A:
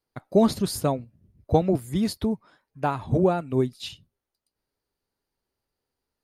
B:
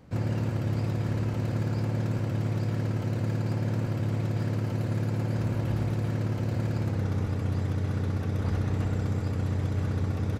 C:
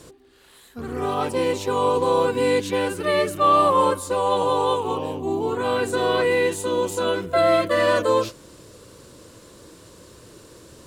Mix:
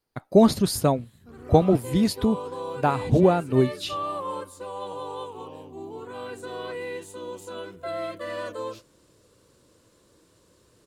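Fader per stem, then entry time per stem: +3.0 dB, mute, -14.0 dB; 0.00 s, mute, 0.50 s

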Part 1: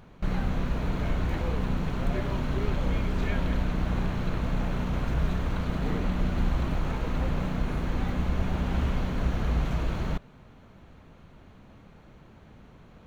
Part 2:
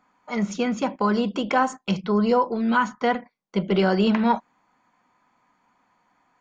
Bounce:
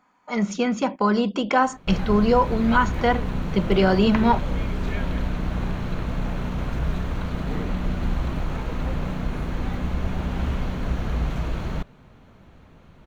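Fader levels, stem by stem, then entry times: +1.5 dB, +1.5 dB; 1.65 s, 0.00 s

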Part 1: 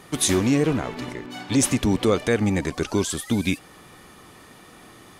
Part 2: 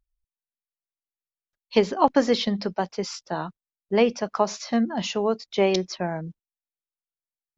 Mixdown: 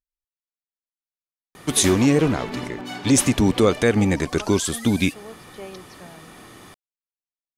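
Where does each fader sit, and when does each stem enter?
+3.0 dB, -17.0 dB; 1.55 s, 0.00 s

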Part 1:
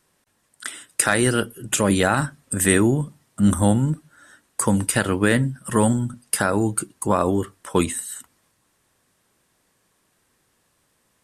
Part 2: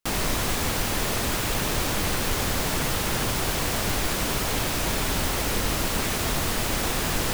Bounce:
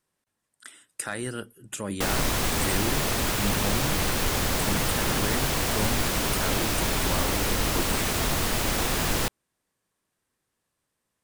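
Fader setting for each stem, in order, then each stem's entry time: -13.5 dB, 0.0 dB; 0.00 s, 1.95 s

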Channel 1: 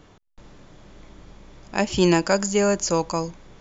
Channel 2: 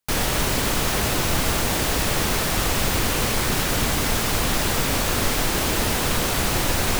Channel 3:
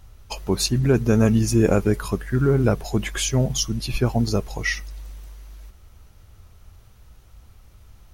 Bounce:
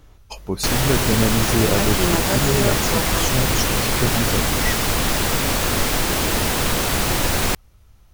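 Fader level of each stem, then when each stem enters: -4.5 dB, +2.0 dB, -3.0 dB; 0.00 s, 0.55 s, 0.00 s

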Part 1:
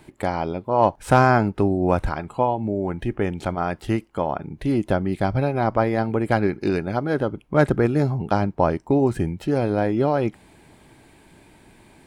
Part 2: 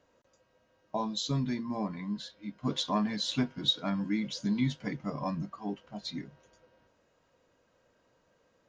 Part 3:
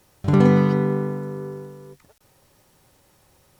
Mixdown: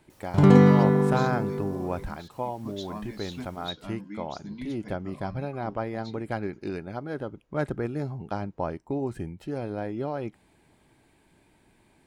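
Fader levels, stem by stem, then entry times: -11.0 dB, -9.0 dB, 0.0 dB; 0.00 s, 0.00 s, 0.10 s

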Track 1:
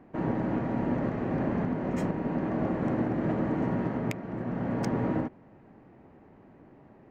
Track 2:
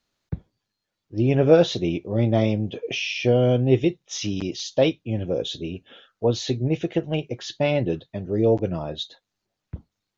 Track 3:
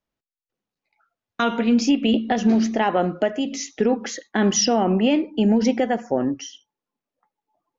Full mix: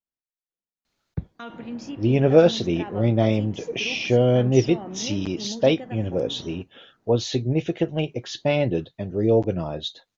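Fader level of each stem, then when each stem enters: -15.5 dB, +0.5 dB, -17.0 dB; 1.35 s, 0.85 s, 0.00 s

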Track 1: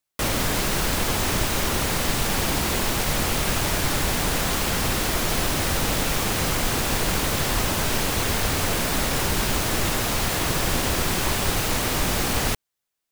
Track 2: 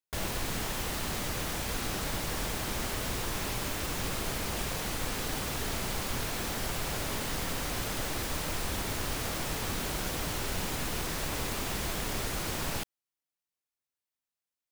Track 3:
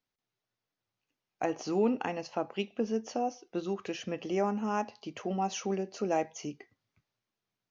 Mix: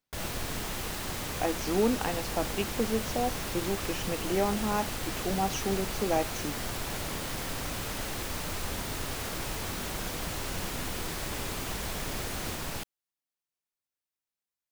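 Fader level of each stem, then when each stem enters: -17.5 dB, -2.5 dB, +1.5 dB; 0.00 s, 0.00 s, 0.00 s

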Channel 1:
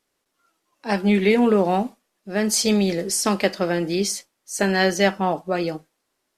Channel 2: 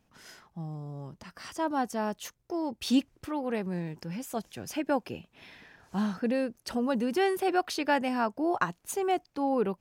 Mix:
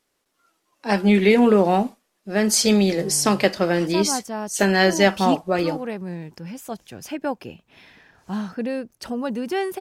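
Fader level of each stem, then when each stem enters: +2.0 dB, +2.0 dB; 0.00 s, 2.35 s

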